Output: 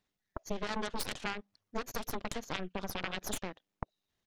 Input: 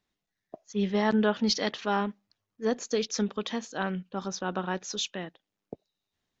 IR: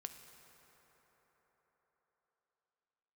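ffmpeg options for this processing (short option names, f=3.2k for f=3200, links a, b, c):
-af "aeval=exprs='0.266*(cos(1*acos(clip(val(0)/0.266,-1,1)))-cos(1*PI/2))+0.0188*(cos(4*acos(clip(val(0)/0.266,-1,1)))-cos(4*PI/2))+0.0422*(cos(6*acos(clip(val(0)/0.266,-1,1)))-cos(6*PI/2))+0.0596*(cos(7*acos(clip(val(0)/0.266,-1,1)))-cos(7*PI/2))+0.0841*(cos(8*acos(clip(val(0)/0.266,-1,1)))-cos(8*PI/2))':c=same,acompressor=threshold=-36dB:ratio=12,atempo=1.5,volume=4.5dB"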